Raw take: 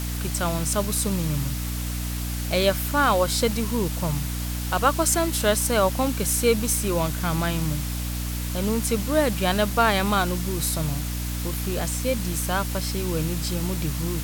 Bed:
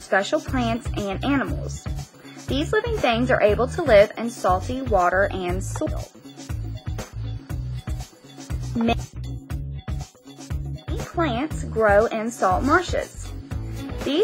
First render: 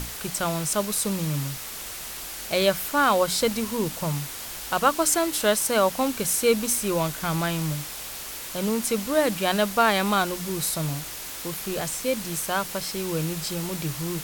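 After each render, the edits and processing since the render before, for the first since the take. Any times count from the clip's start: hum notches 60/120/180/240/300 Hz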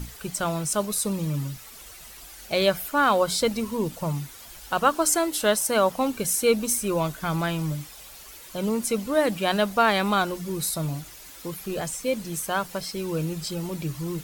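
noise reduction 11 dB, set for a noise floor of -36 dBFS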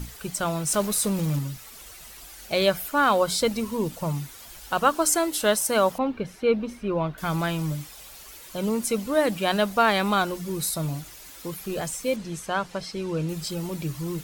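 0.67–1.39 s: jump at every zero crossing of -31 dBFS; 5.98–7.18 s: distance through air 350 m; 12.16–13.29 s: distance through air 67 m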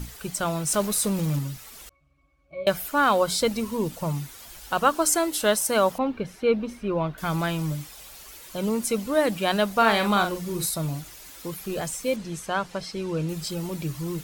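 1.89–2.67 s: pitch-class resonator C#, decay 0.27 s; 9.72–10.66 s: doubling 44 ms -7 dB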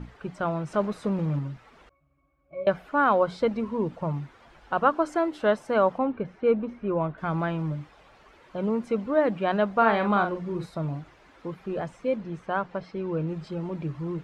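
low-pass 1.6 kHz 12 dB/octave; bass shelf 69 Hz -10 dB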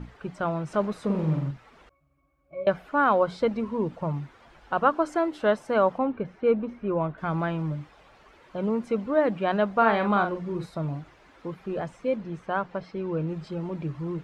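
1.05–1.51 s: flutter echo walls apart 7.6 m, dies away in 0.58 s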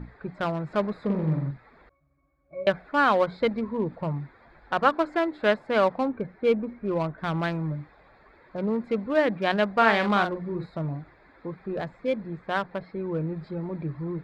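local Wiener filter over 15 samples; high-order bell 2.8 kHz +9 dB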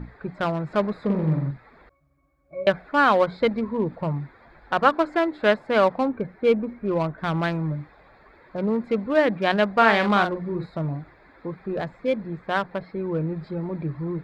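trim +3 dB; peak limiter -3 dBFS, peak gain reduction 0.5 dB

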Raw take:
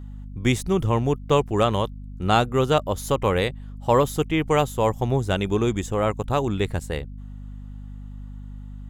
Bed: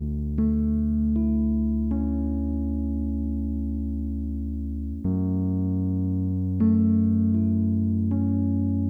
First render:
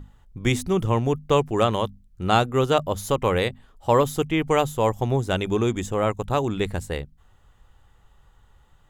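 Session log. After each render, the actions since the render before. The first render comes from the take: hum notches 50/100/150/200/250 Hz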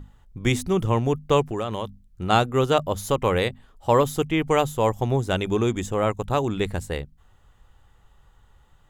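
1.50–2.30 s: compression, threshold -23 dBFS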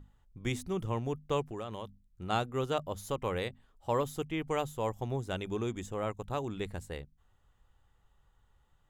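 trim -12 dB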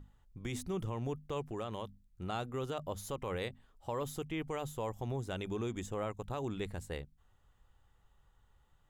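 peak limiter -27.5 dBFS, peak gain reduction 9 dB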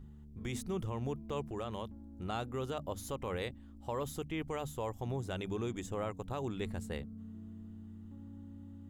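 add bed -26 dB

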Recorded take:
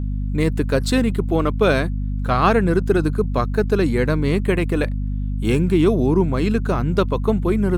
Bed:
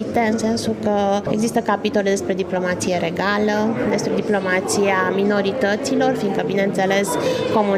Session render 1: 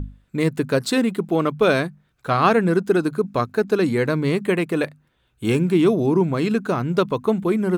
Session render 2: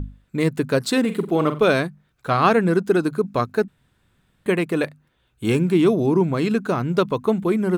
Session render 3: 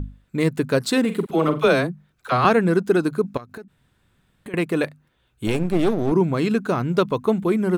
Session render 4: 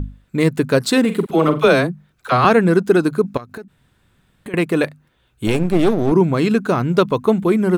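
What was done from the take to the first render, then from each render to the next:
hum notches 50/100/150/200/250 Hz
1.00–1.64 s: flutter echo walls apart 7.8 m, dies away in 0.29 s; 3.68–4.46 s: room tone
1.26–2.45 s: phase dispersion lows, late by 43 ms, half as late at 540 Hz; 3.37–4.54 s: compression 16:1, threshold -33 dBFS; 5.47–6.12 s: partial rectifier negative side -12 dB
trim +4.5 dB; peak limiter -2 dBFS, peak gain reduction 1.5 dB

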